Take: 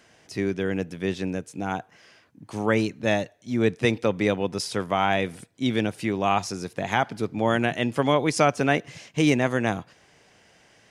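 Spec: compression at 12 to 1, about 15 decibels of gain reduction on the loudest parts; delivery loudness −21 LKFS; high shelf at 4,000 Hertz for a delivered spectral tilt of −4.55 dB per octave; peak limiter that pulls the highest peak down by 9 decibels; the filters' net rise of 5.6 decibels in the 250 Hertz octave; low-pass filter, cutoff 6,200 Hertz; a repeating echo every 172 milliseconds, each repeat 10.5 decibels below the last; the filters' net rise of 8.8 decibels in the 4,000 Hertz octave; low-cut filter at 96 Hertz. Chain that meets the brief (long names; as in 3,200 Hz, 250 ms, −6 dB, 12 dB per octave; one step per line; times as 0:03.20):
high-pass filter 96 Hz
low-pass filter 6,200 Hz
parametric band 250 Hz +7 dB
high-shelf EQ 4,000 Hz +8 dB
parametric band 4,000 Hz +7.5 dB
downward compressor 12 to 1, threshold −27 dBFS
brickwall limiter −21 dBFS
repeating echo 172 ms, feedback 30%, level −10.5 dB
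level +12.5 dB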